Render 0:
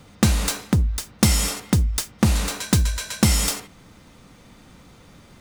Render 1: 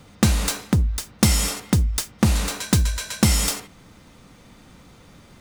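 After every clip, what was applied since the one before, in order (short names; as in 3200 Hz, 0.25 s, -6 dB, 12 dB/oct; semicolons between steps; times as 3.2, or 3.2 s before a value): nothing audible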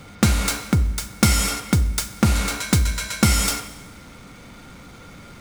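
G.711 law mismatch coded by mu; small resonant body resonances 1400/2200 Hz, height 16 dB, ringing for 90 ms; reverb RT60 1.2 s, pre-delay 31 ms, DRR 12.5 dB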